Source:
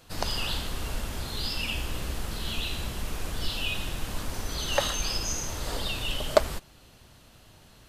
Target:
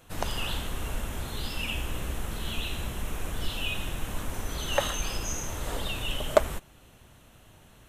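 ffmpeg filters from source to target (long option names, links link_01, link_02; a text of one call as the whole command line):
ffmpeg -i in.wav -af "equalizer=frequency=4700:width=3.2:gain=-13" out.wav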